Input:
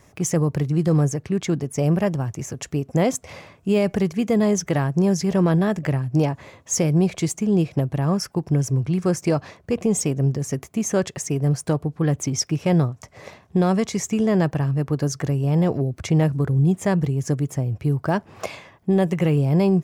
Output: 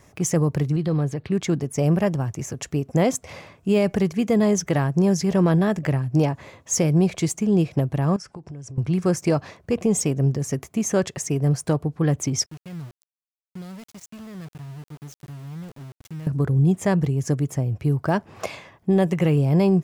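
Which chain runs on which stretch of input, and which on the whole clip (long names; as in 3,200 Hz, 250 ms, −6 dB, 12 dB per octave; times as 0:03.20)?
0:00.76–0:01.30: high shelf with overshoot 5,000 Hz −7 dB, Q 3 + downward compressor 1.5 to 1, threshold −26 dBFS
0:08.16–0:08.78: Butterworth low-pass 9,300 Hz + downward compressor 10 to 1, threshold −34 dBFS
0:12.46–0:16.27: guitar amp tone stack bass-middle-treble 6-0-2 + centre clipping without the shift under −41 dBFS
whole clip: no processing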